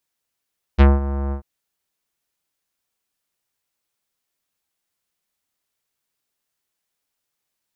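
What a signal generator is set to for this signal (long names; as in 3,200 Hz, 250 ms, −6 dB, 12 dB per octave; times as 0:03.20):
subtractive voice square C#2 24 dB per octave, low-pass 1,300 Hz, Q 0.76, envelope 2 octaves, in 0.10 s, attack 27 ms, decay 0.19 s, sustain −14.5 dB, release 0.10 s, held 0.54 s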